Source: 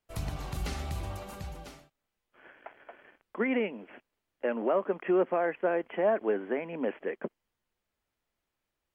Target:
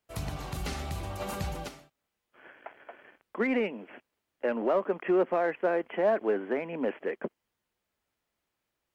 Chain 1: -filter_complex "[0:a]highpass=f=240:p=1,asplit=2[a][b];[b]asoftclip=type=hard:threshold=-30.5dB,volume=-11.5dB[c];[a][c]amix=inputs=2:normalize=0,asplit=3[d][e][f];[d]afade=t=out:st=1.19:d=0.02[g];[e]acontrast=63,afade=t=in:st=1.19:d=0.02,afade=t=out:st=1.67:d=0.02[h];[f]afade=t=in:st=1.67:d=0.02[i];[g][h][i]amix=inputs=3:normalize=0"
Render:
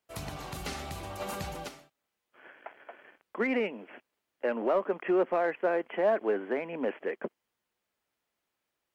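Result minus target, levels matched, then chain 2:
125 Hz band -5.0 dB
-filter_complex "[0:a]highpass=f=75:p=1,asplit=2[a][b];[b]asoftclip=type=hard:threshold=-30.5dB,volume=-11.5dB[c];[a][c]amix=inputs=2:normalize=0,asplit=3[d][e][f];[d]afade=t=out:st=1.19:d=0.02[g];[e]acontrast=63,afade=t=in:st=1.19:d=0.02,afade=t=out:st=1.67:d=0.02[h];[f]afade=t=in:st=1.67:d=0.02[i];[g][h][i]amix=inputs=3:normalize=0"

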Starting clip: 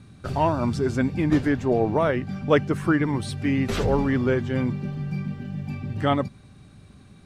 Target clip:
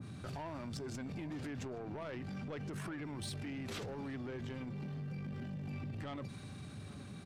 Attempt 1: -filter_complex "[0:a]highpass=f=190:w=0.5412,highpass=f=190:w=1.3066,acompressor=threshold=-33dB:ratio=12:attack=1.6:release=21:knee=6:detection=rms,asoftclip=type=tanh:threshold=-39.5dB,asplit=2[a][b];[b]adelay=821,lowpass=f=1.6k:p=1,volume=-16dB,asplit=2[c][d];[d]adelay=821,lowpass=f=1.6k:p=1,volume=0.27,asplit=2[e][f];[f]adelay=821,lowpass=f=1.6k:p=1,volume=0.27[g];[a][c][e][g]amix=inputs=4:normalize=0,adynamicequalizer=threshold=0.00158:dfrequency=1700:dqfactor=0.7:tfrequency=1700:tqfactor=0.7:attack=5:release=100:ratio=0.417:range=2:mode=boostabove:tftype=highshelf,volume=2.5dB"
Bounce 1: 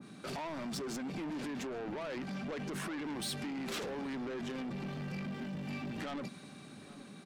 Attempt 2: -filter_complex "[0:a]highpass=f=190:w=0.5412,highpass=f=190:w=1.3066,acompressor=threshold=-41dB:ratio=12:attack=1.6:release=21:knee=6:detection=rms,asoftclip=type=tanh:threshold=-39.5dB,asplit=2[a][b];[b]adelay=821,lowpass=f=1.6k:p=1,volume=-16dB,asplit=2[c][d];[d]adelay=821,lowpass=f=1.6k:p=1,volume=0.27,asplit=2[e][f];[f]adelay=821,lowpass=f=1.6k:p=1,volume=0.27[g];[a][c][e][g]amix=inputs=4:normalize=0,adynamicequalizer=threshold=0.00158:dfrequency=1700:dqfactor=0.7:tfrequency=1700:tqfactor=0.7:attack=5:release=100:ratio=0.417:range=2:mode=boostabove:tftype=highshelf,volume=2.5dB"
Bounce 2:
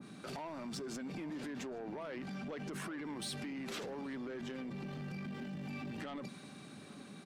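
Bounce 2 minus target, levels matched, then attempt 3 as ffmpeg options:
125 Hz band -6.0 dB
-filter_complex "[0:a]highpass=f=81:w=0.5412,highpass=f=81:w=1.3066,acompressor=threshold=-41dB:ratio=12:attack=1.6:release=21:knee=6:detection=rms,asoftclip=type=tanh:threshold=-39.5dB,asplit=2[a][b];[b]adelay=821,lowpass=f=1.6k:p=1,volume=-16dB,asplit=2[c][d];[d]adelay=821,lowpass=f=1.6k:p=1,volume=0.27,asplit=2[e][f];[f]adelay=821,lowpass=f=1.6k:p=1,volume=0.27[g];[a][c][e][g]amix=inputs=4:normalize=0,adynamicequalizer=threshold=0.00158:dfrequency=1700:dqfactor=0.7:tfrequency=1700:tqfactor=0.7:attack=5:release=100:ratio=0.417:range=2:mode=boostabove:tftype=highshelf,volume=2.5dB"

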